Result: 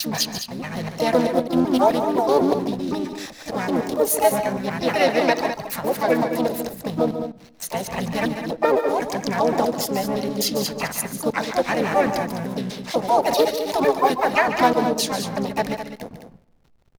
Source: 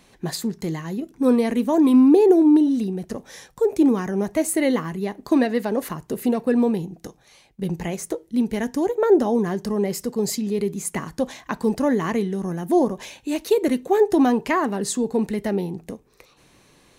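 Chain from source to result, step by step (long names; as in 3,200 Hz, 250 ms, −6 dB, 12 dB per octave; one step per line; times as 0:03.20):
slices reordered back to front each 127 ms, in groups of 4
bass and treble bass −8 dB, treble +6 dB
phaser with its sweep stopped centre 1,700 Hz, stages 8
pitch-shifted copies added −7 semitones −11 dB, +5 semitones −4 dB
slack as between gear wheels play −42 dBFS
multi-tap delay 144/207 ms −10.5/−9.5 dB
on a send at −20 dB: convolution reverb RT60 1.2 s, pre-delay 6 ms
on the sum: highs frequency-modulated by the lows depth 0.18 ms
level +6 dB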